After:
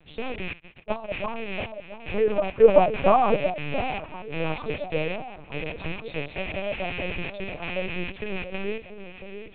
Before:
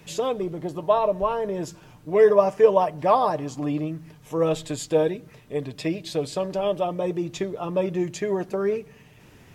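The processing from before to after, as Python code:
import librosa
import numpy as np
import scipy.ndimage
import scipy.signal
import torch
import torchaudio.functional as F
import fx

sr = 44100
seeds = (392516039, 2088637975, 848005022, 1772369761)

p1 = fx.rattle_buzz(x, sr, strikes_db=-35.0, level_db=-14.0)
p2 = scipy.signal.sosfilt(scipy.signal.butter(2, 93.0, 'highpass', fs=sr, output='sos'), p1)
p3 = 10.0 ** (-15.5 / 20.0) * np.tanh(p2 / 10.0 ** (-15.5 / 20.0))
p4 = p2 + (p3 * 10.0 ** (-10.0 / 20.0))
p5 = fx.small_body(p4, sr, hz=(550.0, 790.0, 1200.0), ring_ms=20, db=fx.line((2.55, 14.0), (3.34, 9.0)), at=(2.55, 3.34), fade=0.02)
p6 = p5 + fx.echo_alternate(p5, sr, ms=683, hz=880.0, feedback_pct=64, wet_db=-9, dry=0)
p7 = fx.lpc_vocoder(p6, sr, seeds[0], excitation='pitch_kept', order=8)
p8 = fx.upward_expand(p7, sr, threshold_db=-31.0, expansion=2.5, at=(0.53, 1.11))
y = p8 * 10.0 ** (-8.5 / 20.0)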